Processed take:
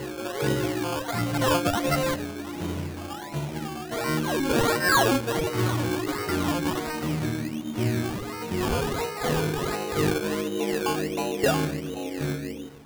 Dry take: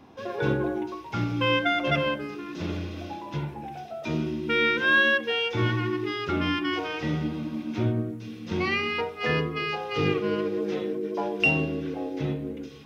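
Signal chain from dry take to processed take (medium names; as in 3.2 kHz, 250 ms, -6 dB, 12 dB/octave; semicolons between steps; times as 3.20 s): reverse echo 575 ms -7 dB; decimation with a swept rate 18×, swing 60% 1.4 Hz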